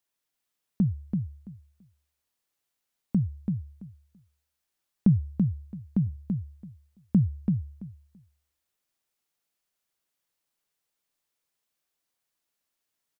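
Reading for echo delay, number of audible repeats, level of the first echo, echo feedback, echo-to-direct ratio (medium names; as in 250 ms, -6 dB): 334 ms, 2, -4.5 dB, 17%, -4.5 dB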